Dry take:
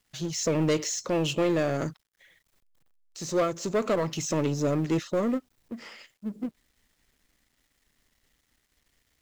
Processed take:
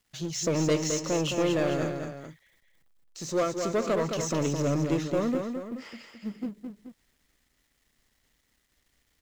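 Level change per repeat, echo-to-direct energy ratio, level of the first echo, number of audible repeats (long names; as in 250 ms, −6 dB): −6.0 dB, −5.0 dB, −6.0 dB, 2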